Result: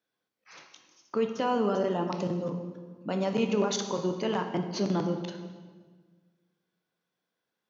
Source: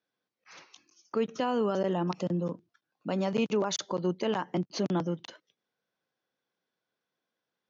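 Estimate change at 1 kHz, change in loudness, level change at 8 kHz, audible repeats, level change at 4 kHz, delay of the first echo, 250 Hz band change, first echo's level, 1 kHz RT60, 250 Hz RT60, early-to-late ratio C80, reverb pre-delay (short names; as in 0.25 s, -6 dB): +2.0 dB, +1.0 dB, n/a, none, +1.0 dB, none, +1.0 dB, none, 1.4 s, 1.8 s, 9.0 dB, 10 ms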